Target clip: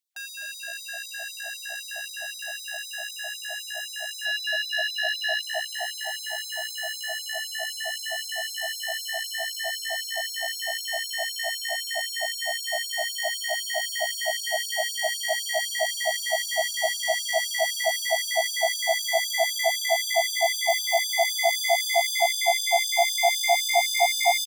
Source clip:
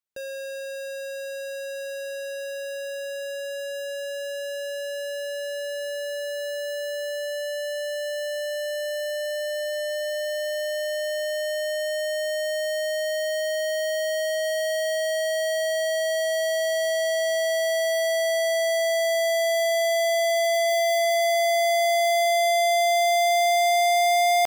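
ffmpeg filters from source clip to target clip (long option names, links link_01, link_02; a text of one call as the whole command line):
ffmpeg -i in.wav -filter_complex "[0:a]asettb=1/sr,asplit=3[link_01][link_02][link_03];[link_01]atrim=end=4.254[link_04];[link_02]atrim=start=4.25:end=5.42,asetpts=PTS-STARTPTS,afade=type=in:duration=0.004:curve=qsin,afade=type=out:start_time=1.166:duration=0.004:curve=qsin,equalizer=frequency=500:width_type=o:width=1:gain=10,equalizer=frequency=2000:width_type=o:width=1:gain=11,equalizer=frequency=4000:width_type=o:width=1:gain=9,equalizer=frequency=8000:width_type=o:width=1:gain=-7[link_05];[link_03]atrim=start=5.416[link_06];[link_04][link_05]acrossfade=duration=0.004:curve1=hsin:curve2=qsin[link_07];[link_07][link_06]acrossfade=duration=0.004:curve1=qsin:curve2=hsin,asplit=6[link_08][link_09][link_10][link_11][link_12][link_13];[link_09]adelay=251,afreqshift=67,volume=-8.5dB[link_14];[link_10]adelay=502,afreqshift=134,volume=-15.6dB[link_15];[link_11]adelay=753,afreqshift=201,volume=-22.8dB[link_16];[link_12]adelay=1004,afreqshift=268,volume=-29.9dB[link_17];[link_13]adelay=1255,afreqshift=335,volume=-37dB[link_18];[link_08][link_14][link_15][link_16][link_17][link_18]amix=inputs=6:normalize=0,asplit=2[link_19][link_20];[link_20]alimiter=limit=-23.5dB:level=0:latency=1,volume=-1dB[link_21];[link_19][link_21]amix=inputs=2:normalize=0,afftfilt=real='re*gte(b*sr/1024,610*pow(3500/610,0.5+0.5*sin(2*PI*3.9*pts/sr)))':imag='im*gte(b*sr/1024,610*pow(3500/610,0.5+0.5*sin(2*PI*3.9*pts/sr)))':win_size=1024:overlap=0.75" out.wav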